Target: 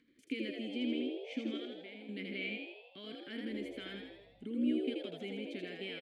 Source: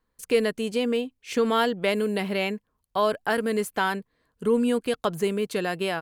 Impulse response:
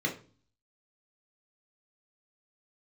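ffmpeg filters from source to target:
-filter_complex "[0:a]acrossover=split=2500[s0][s1];[s0]alimiter=limit=0.119:level=0:latency=1[s2];[s2][s1]amix=inputs=2:normalize=0,acompressor=mode=upward:threshold=0.0141:ratio=2.5,highshelf=f=11000:g=-3,asettb=1/sr,asplit=3[s3][s4][s5];[s3]atrim=end=1.574[s6];[s4]atrim=start=1.57:end=2.09,asetpts=PTS-STARTPTS,afade=t=in:d=0.004:c=qsin,afade=t=out:st=0.516:d=0.004:c=qsin,acompressor=threshold=0.0126:ratio=3[s7];[s5]atrim=start=2.086[s8];[s6][s7]acrossfade=d=0.004:c1=hsin:c2=qsin[s9];[s9][s8]acrossfade=d=0.004:c1=qsin:c2=hsin,asplit=3[s10][s11][s12];[s10]bandpass=f=270:t=q:w=8,volume=1[s13];[s11]bandpass=f=2290:t=q:w=8,volume=0.501[s14];[s12]bandpass=f=3010:t=q:w=8,volume=0.355[s15];[s13][s14][s15]amix=inputs=3:normalize=0,asettb=1/sr,asplit=3[s16][s17][s18];[s16]atrim=end=3.504[s19];[s17]atrim=start=3.5:end=4.44,asetpts=PTS-STARTPTS,afade=t=in:d=0.004:c=qsin,afade=t=out:st=0.936:d=0.004:c=qsin,aeval=exprs='val(0)+0.000447*(sin(2*PI*50*n/s)+sin(2*PI*2*50*n/s)/2+sin(2*PI*3*50*n/s)/3+sin(2*PI*4*50*n/s)/4+sin(2*PI*5*50*n/s)/5)':c=same[s20];[s18]atrim=start=4.436[s21];[s19][s20]acrossfade=d=0.004:c1=hsin:c2=qsin[s22];[s22][s21]acrossfade=d=0.004:c1=qsin:c2=hsin,asplit=2[s23][s24];[s24]asplit=8[s25][s26][s27][s28][s29][s30][s31][s32];[s25]adelay=81,afreqshift=68,volume=0.668[s33];[s26]adelay=162,afreqshift=136,volume=0.389[s34];[s27]adelay=243,afreqshift=204,volume=0.224[s35];[s28]adelay=324,afreqshift=272,volume=0.13[s36];[s29]adelay=405,afreqshift=340,volume=0.0759[s37];[s30]adelay=486,afreqshift=408,volume=0.0437[s38];[s31]adelay=567,afreqshift=476,volume=0.0254[s39];[s32]adelay=648,afreqshift=544,volume=0.0148[s40];[s33][s34][s35][s36][s37][s38][s39][s40]amix=inputs=8:normalize=0[s41];[s23][s41]amix=inputs=2:normalize=0,volume=0.841"

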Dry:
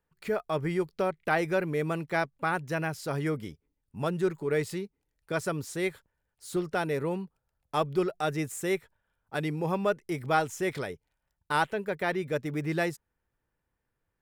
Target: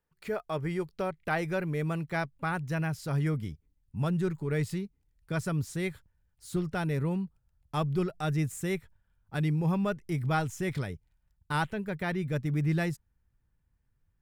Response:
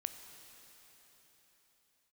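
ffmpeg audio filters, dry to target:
-af "asubboost=boost=5.5:cutoff=180,volume=0.708"

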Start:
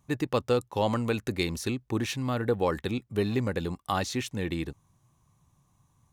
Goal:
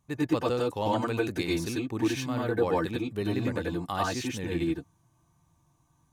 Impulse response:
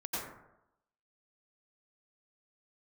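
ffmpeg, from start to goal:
-filter_complex "[1:a]atrim=start_sample=2205,afade=t=out:st=0.15:d=0.01,atrim=end_sample=7056,asetrate=42777,aresample=44100[s0];[0:a][s0]afir=irnorm=-1:irlink=0"

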